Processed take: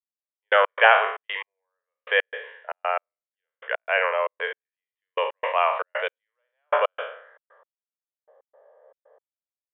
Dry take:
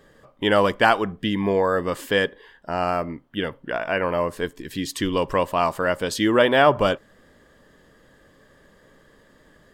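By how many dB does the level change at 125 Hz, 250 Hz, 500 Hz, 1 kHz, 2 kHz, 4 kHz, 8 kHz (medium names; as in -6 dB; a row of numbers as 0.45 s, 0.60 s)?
under -40 dB, under -35 dB, -5.0 dB, -1.0 dB, +1.5 dB, -4.5 dB, under -40 dB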